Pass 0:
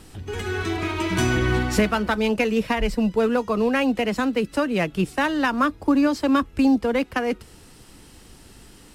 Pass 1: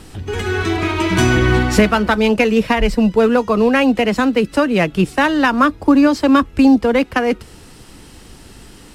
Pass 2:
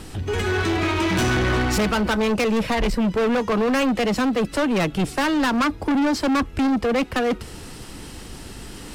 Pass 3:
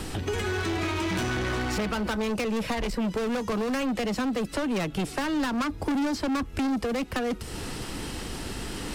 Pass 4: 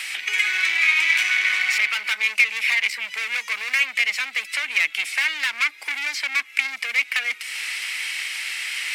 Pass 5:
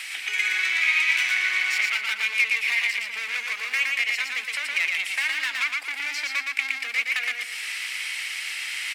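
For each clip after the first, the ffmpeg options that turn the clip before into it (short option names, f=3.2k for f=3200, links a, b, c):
-af "highshelf=f=8.3k:g=-4.5,volume=7.5dB"
-af "areverse,acompressor=mode=upward:threshold=-32dB:ratio=2.5,areverse,asoftclip=type=tanh:threshold=-18.5dB,volume=1dB"
-filter_complex "[0:a]acrossover=split=230|4900[a][b][c];[a]acompressor=threshold=-38dB:ratio=4[d];[b]acompressor=threshold=-34dB:ratio=4[e];[c]acompressor=threshold=-48dB:ratio=4[f];[d][e][f]amix=inputs=3:normalize=0,volume=4dB"
-af "highpass=f=2.2k:t=q:w=7.1,volume=6dB"
-af "aecho=1:1:116|232|348|464:0.708|0.234|0.0771|0.0254,volume=-4.5dB"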